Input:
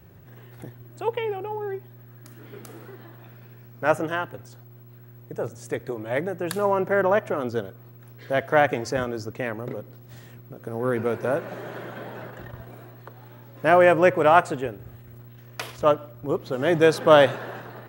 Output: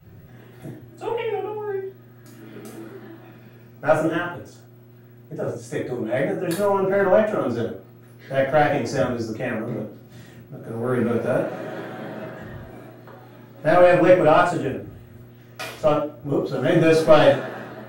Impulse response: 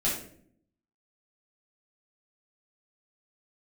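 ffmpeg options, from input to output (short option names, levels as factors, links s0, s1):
-filter_complex "[0:a]asoftclip=type=tanh:threshold=0.376[s0];[1:a]atrim=start_sample=2205,atrim=end_sample=6174,asetrate=42336,aresample=44100[s1];[s0][s1]afir=irnorm=-1:irlink=0,volume=0.473"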